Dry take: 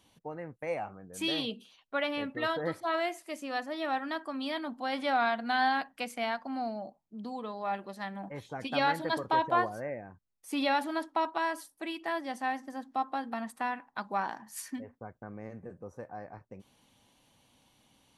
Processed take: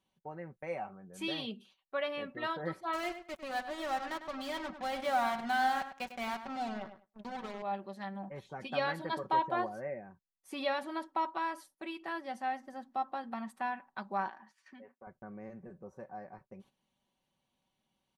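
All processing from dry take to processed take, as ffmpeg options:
ffmpeg -i in.wav -filter_complex "[0:a]asettb=1/sr,asplit=3[link_01][link_02][link_03];[link_01]atrim=end=2.934[link_04];[link_02]atrim=start=2.93:end=7.62,asetpts=PTS-STARTPTS,afade=type=in:duration=0.004:curve=qsin,afade=type=out:start_time=4.686:duration=0.004:curve=qsin,acrusher=bits=5:mix=0:aa=0.5,asplit=2[link_05][link_06];[link_06]adelay=101,lowpass=frequency=3700:poles=1,volume=-10dB,asplit=2[link_07][link_08];[link_08]adelay=101,lowpass=frequency=3700:poles=1,volume=0.19,asplit=2[link_09][link_10];[link_10]adelay=101,lowpass=frequency=3700:poles=1,volume=0.19[link_11];[link_05][link_07][link_09][link_11]amix=inputs=4:normalize=0,atrim=end_sample=206829[link_12];[link_03]atrim=start=7.616[link_13];[link_04][link_12]acrossfade=duration=0.004:curve1=hsin:curve2=qsin[link_14];[link_14][link_13]acrossfade=duration=0.004:curve1=qsin:curve2=hsin,asettb=1/sr,asplit=3[link_15][link_16][link_17];[link_15]atrim=end=14.284[link_18];[link_16]atrim=start=14.28:end=15.07,asetpts=PTS-STARTPTS,afade=type=in:duration=0.004:curve=qsin,afade=type=out:start_time=0.786:duration=0.004:curve=qsin,tiltshelf=frequency=720:gain=-4.5,acompressor=threshold=-45dB:ratio=2:attack=3.2:release=140:knee=1:detection=peak,highpass=210,lowpass=3200[link_19];[link_17]atrim=start=15.066[link_20];[link_18][link_19]acrossfade=duration=0.004:curve1=hsin:curve2=qsin[link_21];[link_21][link_20]acrossfade=duration=0.004:curve1=qsin:curve2=hsin,aecho=1:1:5.3:0.55,agate=range=-11dB:threshold=-55dB:ratio=16:detection=peak,highshelf=frequency=5000:gain=-7.5,volume=-4.5dB" out.wav

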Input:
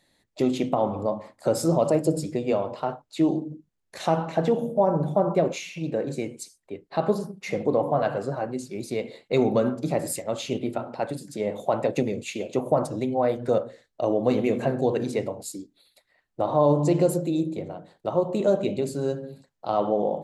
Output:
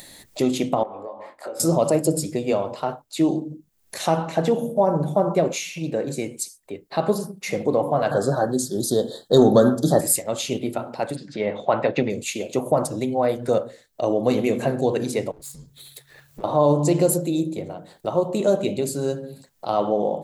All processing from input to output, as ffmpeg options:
ffmpeg -i in.wav -filter_complex "[0:a]asettb=1/sr,asplit=3[link_01][link_02][link_03];[link_01]atrim=end=0.834[link_04];[link_02]atrim=start=0.83:end=1.6,asetpts=PTS-STARTPTS,afade=type=in:duration=0.004:curve=qsin,afade=type=out:start_time=0.766:duration=0.004:curve=qsin,acrossover=split=320 3000:gain=0.1 1 0.126[link_05][link_06][link_07];[link_05][link_06][link_07]amix=inputs=3:normalize=0,acompressor=threshold=-37dB:ratio=3:attack=3.2:release=140:knee=1:detection=peak,asplit=2[link_08][link_09];[link_09]adelay=21,volume=-5dB[link_10];[link_08][link_10]amix=inputs=2:normalize=0,atrim=end_sample=33957[link_11];[link_03]atrim=start=1.596[link_12];[link_04][link_11]acrossfade=duration=0.004:curve1=hsin:curve2=qsin[link_13];[link_13][link_12]acrossfade=duration=0.004:curve1=qsin:curve2=hsin,asettb=1/sr,asplit=3[link_14][link_15][link_16];[link_14]atrim=end=8.114[link_17];[link_15]atrim=start=8.11:end=10.01,asetpts=PTS-STARTPTS,afade=type=in:duration=0.004:curve=qsin,afade=type=out:start_time=1.896:duration=0.004:curve=qsin,equalizer=frequency=990:width_type=o:width=0.28:gain=-3,acontrast=47,asuperstop=centerf=2400:order=20:qfactor=1.9[link_18];[link_16]atrim=start=10.006[link_19];[link_17][link_18]acrossfade=duration=0.004:curve1=hsin:curve2=qsin[link_20];[link_20][link_19]acrossfade=duration=0.004:curve1=qsin:curve2=hsin,asettb=1/sr,asplit=3[link_21][link_22][link_23];[link_21]atrim=end=11.164[link_24];[link_22]atrim=start=11.16:end=12.1,asetpts=PTS-STARTPTS,afade=type=in:duration=0.004:curve=qsin,afade=type=out:start_time=0.936:duration=0.004:curve=qsin,lowpass=frequency=4200:width=0.5412,lowpass=frequency=4200:width=1.3066,equalizer=frequency=1600:width=0.95:gain=6.5[link_25];[link_23]atrim=start=12.096[link_26];[link_24][link_25]acrossfade=duration=0.004:curve1=hsin:curve2=qsin[link_27];[link_27][link_26]acrossfade=duration=0.004:curve1=qsin:curve2=hsin,asettb=1/sr,asplit=3[link_28][link_29][link_30];[link_28]atrim=end=15.314[link_31];[link_29]atrim=start=15.31:end=16.44,asetpts=PTS-STARTPTS,afade=type=in:duration=0.004:curve=qsin,afade=type=out:start_time=1.126:duration=0.004:curve=qsin,aeval=exprs='if(lt(val(0),0),0.447*val(0),val(0))':channel_layout=same,acompressor=threshold=-46dB:ratio=4:attack=3.2:release=140:knee=1:detection=peak,afreqshift=-140[link_32];[link_30]atrim=start=16.436[link_33];[link_31][link_32]acrossfade=duration=0.004:curve1=hsin:curve2=qsin[link_34];[link_34][link_33]acrossfade=duration=0.004:curve1=qsin:curve2=hsin,aemphasis=mode=production:type=50kf,acompressor=mode=upward:threshold=-33dB:ratio=2.5,volume=2dB" out.wav

